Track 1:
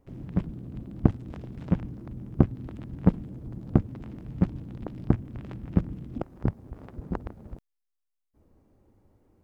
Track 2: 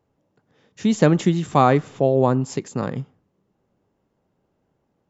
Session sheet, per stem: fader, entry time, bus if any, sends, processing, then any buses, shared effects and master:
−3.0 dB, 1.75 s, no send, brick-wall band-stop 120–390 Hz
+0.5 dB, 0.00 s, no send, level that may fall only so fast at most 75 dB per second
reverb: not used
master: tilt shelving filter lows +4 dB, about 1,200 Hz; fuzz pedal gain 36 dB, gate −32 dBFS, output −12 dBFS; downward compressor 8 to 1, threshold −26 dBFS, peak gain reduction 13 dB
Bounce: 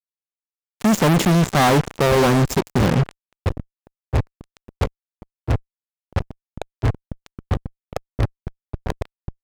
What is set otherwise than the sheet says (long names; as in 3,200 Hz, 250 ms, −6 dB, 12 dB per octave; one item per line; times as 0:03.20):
stem 2: missing level that may fall only so fast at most 75 dB per second
master: missing downward compressor 8 to 1, threshold −26 dBFS, peak gain reduction 13 dB